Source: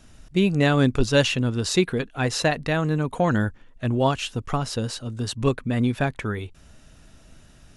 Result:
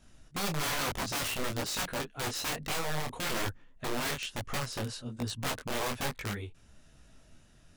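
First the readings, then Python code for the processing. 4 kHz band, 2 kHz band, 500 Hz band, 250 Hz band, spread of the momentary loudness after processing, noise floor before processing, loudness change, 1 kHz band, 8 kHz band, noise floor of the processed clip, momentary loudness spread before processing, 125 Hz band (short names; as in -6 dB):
-5.5 dB, -7.5 dB, -14.0 dB, -16.0 dB, 6 LU, -52 dBFS, -10.5 dB, -7.5 dB, -2.5 dB, -60 dBFS, 10 LU, -15.5 dB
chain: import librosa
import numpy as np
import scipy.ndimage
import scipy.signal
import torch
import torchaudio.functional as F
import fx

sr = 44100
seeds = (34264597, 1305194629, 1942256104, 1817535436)

y = (np.mod(10.0 ** (19.0 / 20.0) * x + 1.0, 2.0) - 1.0) / 10.0 ** (19.0 / 20.0)
y = fx.detune_double(y, sr, cents=39)
y = F.gain(torch.from_numpy(y), -4.5).numpy()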